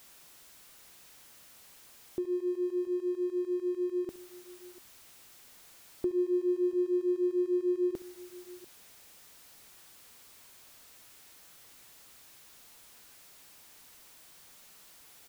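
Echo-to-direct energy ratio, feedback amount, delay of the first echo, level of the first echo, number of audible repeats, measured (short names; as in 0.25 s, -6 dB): -15.5 dB, no steady repeat, 67 ms, -18.0 dB, 2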